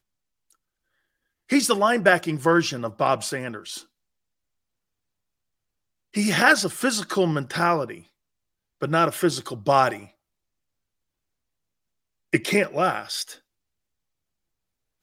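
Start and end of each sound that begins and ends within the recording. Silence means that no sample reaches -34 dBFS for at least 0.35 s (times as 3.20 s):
1.50–3.80 s
6.15–7.97 s
8.82–10.03 s
12.33–13.33 s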